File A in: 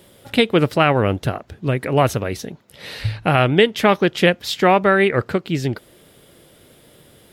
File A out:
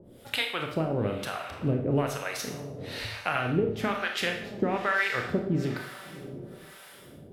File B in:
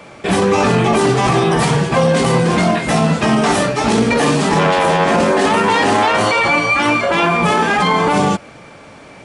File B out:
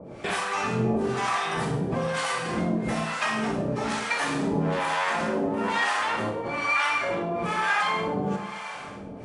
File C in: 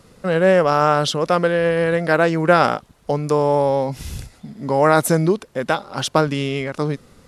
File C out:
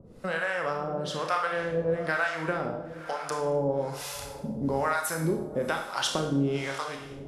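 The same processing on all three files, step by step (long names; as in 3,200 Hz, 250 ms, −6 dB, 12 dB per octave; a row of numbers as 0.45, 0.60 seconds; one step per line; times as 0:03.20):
dynamic equaliser 1,500 Hz, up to +5 dB, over −27 dBFS, Q 1.1
downward compressor 5 to 1, threshold −22 dBFS
feedback delay with all-pass diffusion 633 ms, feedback 45%, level −13.5 dB
two-band tremolo in antiphase 1.1 Hz, depth 100%, crossover 670 Hz
four-comb reverb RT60 0.63 s, combs from 25 ms, DRR 3 dB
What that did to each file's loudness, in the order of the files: −11.5, −12.5, −11.5 LU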